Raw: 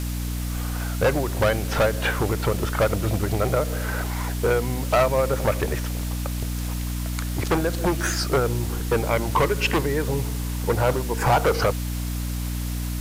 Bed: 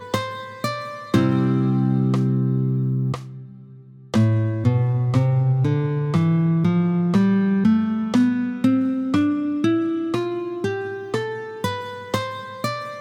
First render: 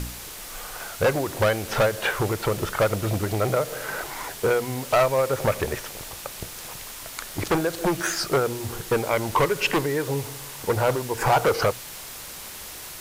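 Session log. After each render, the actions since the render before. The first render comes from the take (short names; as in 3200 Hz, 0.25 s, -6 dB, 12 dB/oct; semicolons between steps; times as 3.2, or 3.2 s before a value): de-hum 60 Hz, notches 5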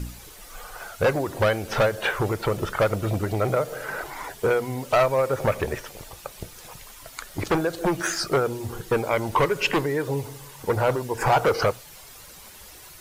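denoiser 10 dB, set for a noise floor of -39 dBFS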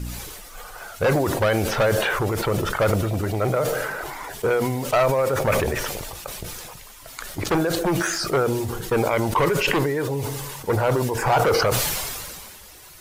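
sustainer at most 28 dB/s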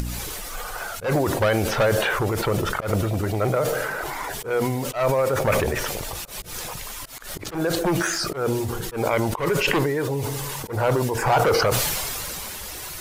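upward compressor, threshold -23 dBFS; auto swell 0.143 s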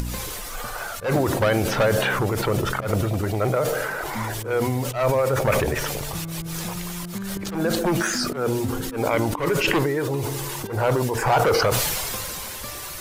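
add bed -14.5 dB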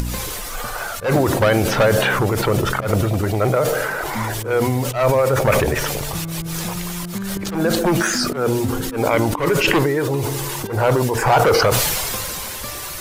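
gain +4.5 dB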